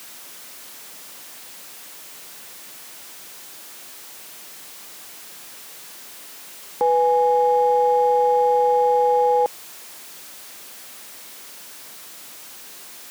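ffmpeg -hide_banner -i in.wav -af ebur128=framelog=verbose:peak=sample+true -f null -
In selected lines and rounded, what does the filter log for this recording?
Integrated loudness:
  I:         -18.2 LUFS
  Threshold: -34.4 LUFS
Loudness range:
  LRA:        18.9 LU
  Threshold: -43.4 LUFS
  LRA low:   -37.2 LUFS
  LRA high:  -18.4 LUFS
Sample peak:
  Peak:      -11.4 dBFS
True peak:
  Peak:      -11.4 dBFS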